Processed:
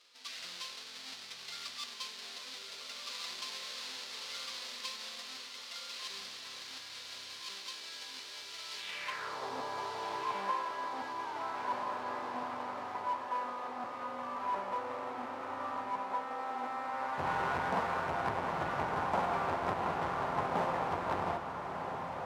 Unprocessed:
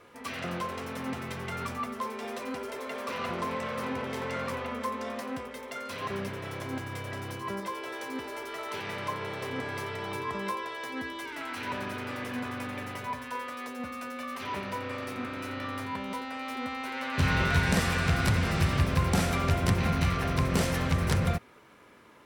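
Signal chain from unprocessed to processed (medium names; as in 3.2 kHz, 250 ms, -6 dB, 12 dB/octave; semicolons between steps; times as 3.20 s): square wave that keeps the level; band-pass sweep 4.3 kHz -> 880 Hz, 8.76–9.45 s; echo that smears into a reverb 1360 ms, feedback 49%, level -6 dB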